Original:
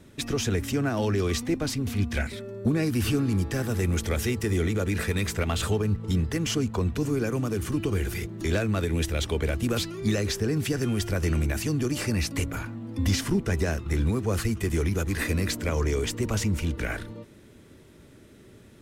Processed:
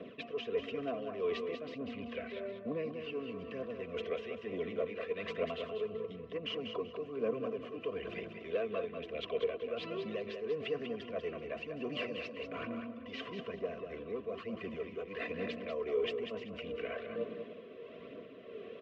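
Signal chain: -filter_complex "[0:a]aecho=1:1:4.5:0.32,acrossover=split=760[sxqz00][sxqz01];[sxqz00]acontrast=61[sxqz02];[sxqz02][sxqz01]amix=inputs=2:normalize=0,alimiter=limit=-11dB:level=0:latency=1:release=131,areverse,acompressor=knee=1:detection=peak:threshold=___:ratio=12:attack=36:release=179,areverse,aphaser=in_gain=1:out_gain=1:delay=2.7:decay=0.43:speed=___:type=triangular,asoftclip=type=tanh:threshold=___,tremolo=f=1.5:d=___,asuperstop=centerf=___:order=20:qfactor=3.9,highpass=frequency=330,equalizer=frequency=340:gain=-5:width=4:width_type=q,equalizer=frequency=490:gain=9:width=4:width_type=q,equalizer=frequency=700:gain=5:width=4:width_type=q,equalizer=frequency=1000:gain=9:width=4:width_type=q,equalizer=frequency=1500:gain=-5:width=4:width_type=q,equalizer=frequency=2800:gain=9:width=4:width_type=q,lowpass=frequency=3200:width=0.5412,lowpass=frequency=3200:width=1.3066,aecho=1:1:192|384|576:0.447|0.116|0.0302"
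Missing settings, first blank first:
-34dB, 1.1, -23dB, 0.5, 860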